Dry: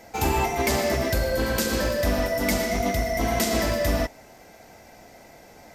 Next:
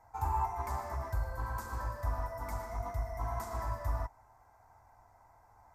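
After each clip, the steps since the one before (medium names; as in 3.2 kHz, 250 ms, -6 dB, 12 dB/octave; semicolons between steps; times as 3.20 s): FFT filter 110 Hz 0 dB, 170 Hz -19 dB, 550 Hz -17 dB, 980 Hz +6 dB, 2.9 kHz -27 dB, 7.5 kHz -15 dB; trim -7.5 dB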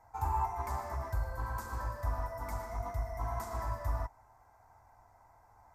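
no audible change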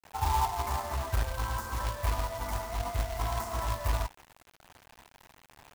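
companded quantiser 4-bit; trim +4 dB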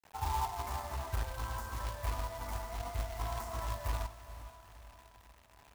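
echo that smears into a reverb 454 ms, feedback 49%, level -13.5 dB; trim -6.5 dB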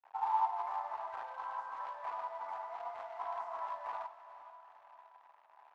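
ladder band-pass 1 kHz, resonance 50%; trim +9.5 dB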